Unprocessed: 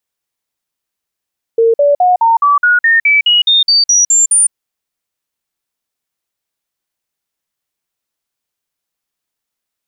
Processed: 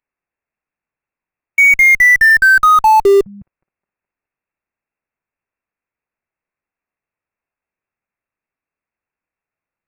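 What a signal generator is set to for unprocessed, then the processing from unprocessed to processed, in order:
stepped sine 457 Hz up, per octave 3, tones 14, 0.16 s, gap 0.05 s -6 dBFS
inverted band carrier 2700 Hz; in parallel at -4.5 dB: Schmitt trigger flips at -20 dBFS

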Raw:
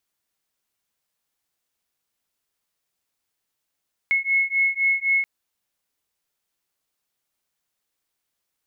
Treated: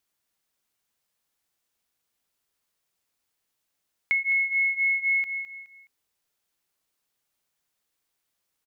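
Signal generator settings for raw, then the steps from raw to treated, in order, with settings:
beating tones 2180 Hz, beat 3.9 Hz, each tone -21.5 dBFS 1.13 s
on a send: feedback echo 0.21 s, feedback 30%, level -11 dB; on the sum: compressor, threshold -21 dBFS

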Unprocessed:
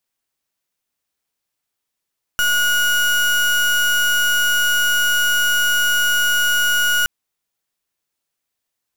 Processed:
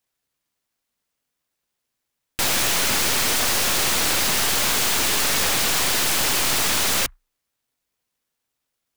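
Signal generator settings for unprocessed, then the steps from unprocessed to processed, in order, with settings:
pulse 1450 Hz, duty 32% -16.5 dBFS 4.67 s
ripple EQ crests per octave 1, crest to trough 10 dB; noise-modulated delay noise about 1300 Hz, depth 0.36 ms

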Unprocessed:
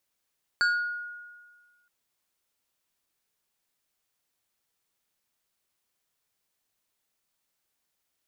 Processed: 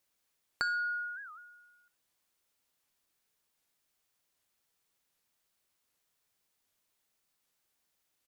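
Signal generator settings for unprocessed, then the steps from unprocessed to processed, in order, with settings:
FM tone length 1.27 s, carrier 1440 Hz, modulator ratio 2.12, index 0.89, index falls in 0.71 s exponential, decay 1.56 s, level -19 dB
compressor, threshold -31 dBFS; feedback echo 64 ms, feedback 28%, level -21 dB; record warp 78 rpm, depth 250 cents

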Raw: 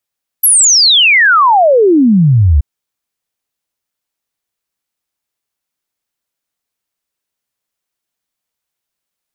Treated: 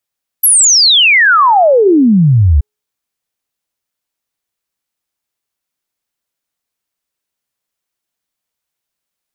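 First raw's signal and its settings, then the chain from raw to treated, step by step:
log sweep 12000 Hz -> 66 Hz 2.18 s -4.5 dBFS
de-hum 420.8 Hz, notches 4

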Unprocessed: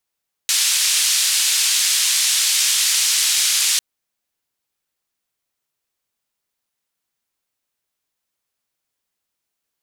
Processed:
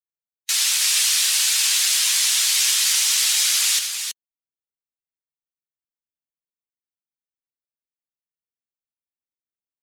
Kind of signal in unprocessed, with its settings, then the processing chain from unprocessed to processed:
noise band 2900–8400 Hz, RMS -17.5 dBFS 3.30 s
per-bin expansion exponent 1.5; on a send: tapped delay 80/324 ms -9/-7 dB

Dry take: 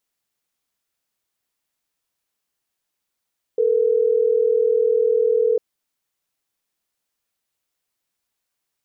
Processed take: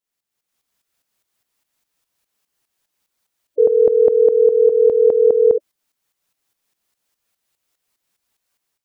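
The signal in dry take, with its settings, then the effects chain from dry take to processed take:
call progress tone ringback tone, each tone -17.5 dBFS
spectral gate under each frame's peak -15 dB strong; AGC gain up to 9.5 dB; tremolo saw up 4.9 Hz, depth 70%

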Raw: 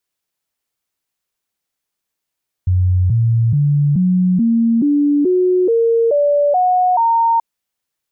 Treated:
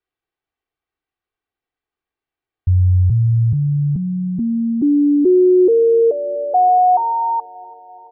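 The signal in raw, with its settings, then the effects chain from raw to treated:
stepped sine 91.3 Hz up, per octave 3, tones 11, 0.43 s, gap 0.00 s -10.5 dBFS
air absorption 410 m; comb 2.6 ms, depth 56%; thinning echo 0.337 s, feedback 65%, high-pass 160 Hz, level -23.5 dB

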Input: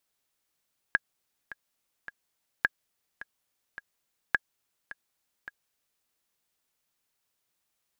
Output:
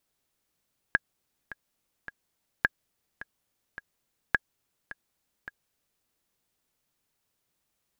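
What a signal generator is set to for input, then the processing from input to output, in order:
metronome 106 bpm, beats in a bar 3, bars 3, 1650 Hz, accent 17.5 dB -9 dBFS
low shelf 500 Hz +8 dB

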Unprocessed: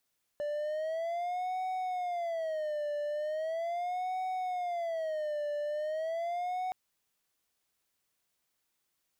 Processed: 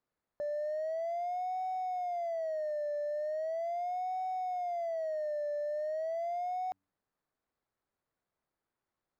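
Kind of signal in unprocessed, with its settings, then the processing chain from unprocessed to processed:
siren wail 588–746 Hz 0.39/s triangle -29.5 dBFS 6.32 s
median filter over 15 samples; high shelf 4000 Hz -6.5 dB; de-hum 95.61 Hz, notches 3

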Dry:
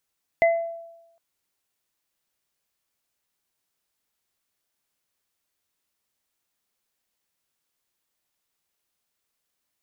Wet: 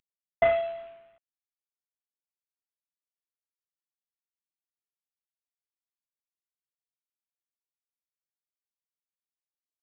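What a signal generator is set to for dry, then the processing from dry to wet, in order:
sine partials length 0.76 s, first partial 670 Hz, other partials 2040 Hz, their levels -5.5 dB, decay 0.95 s, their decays 0.35 s, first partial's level -13.5 dB
CVSD 16 kbps

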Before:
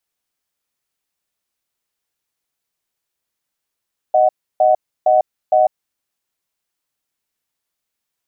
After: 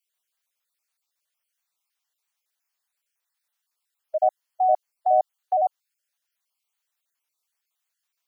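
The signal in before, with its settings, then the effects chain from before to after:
cadence 622 Hz, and 743 Hz, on 0.15 s, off 0.31 s, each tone -12 dBFS 1.73 s
random spectral dropouts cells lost 32%; HPF 820 Hz 12 dB/oct

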